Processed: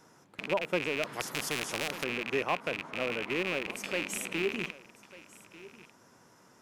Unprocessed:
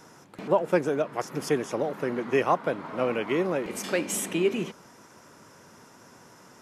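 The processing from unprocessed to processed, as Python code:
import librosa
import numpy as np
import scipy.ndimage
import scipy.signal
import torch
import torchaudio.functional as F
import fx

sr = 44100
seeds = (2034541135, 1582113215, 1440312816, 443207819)

y = fx.rattle_buzz(x, sr, strikes_db=-39.0, level_db=-14.0)
y = y + 10.0 ** (-19.0 / 20.0) * np.pad(y, (int(1194 * sr / 1000.0), 0))[:len(y)]
y = fx.spectral_comp(y, sr, ratio=2.0, at=(1.03, 2.04))
y = y * librosa.db_to_amplitude(-8.0)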